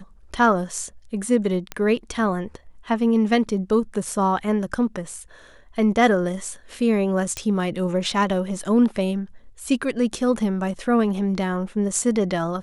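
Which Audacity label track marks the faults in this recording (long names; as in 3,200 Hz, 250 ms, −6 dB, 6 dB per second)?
1.720000	1.720000	click −13 dBFS
7.370000	7.370000	click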